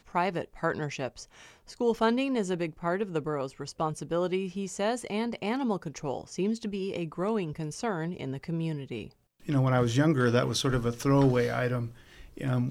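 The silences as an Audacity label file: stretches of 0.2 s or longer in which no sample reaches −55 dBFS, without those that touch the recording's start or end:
9.130000	9.400000	silence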